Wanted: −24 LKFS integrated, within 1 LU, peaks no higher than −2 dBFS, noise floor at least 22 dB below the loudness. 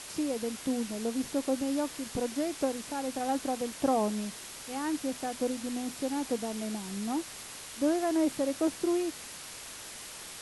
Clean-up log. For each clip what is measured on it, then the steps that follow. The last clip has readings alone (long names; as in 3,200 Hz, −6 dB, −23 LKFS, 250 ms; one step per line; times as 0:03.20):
background noise floor −45 dBFS; target noise floor −55 dBFS; integrated loudness −32.5 LKFS; sample peak −17.0 dBFS; target loudness −24.0 LKFS
→ broadband denoise 10 dB, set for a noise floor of −45 dBFS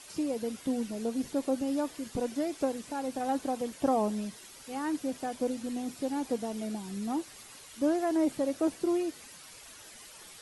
background noise floor −51 dBFS; target noise floor −55 dBFS
→ broadband denoise 6 dB, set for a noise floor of −51 dBFS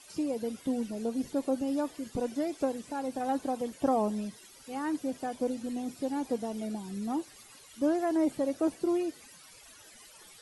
background noise floor −54 dBFS; target noise floor −55 dBFS
→ broadband denoise 6 dB, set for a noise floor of −54 dBFS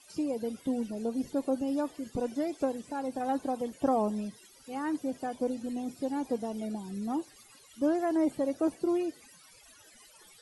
background noise floor −57 dBFS; integrated loudness −32.5 LKFS; sample peak −18.0 dBFS; target loudness −24.0 LKFS
→ level +8.5 dB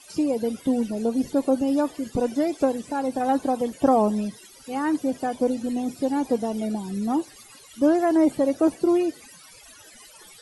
integrated loudness −24.0 LKFS; sample peak −9.5 dBFS; background noise floor −49 dBFS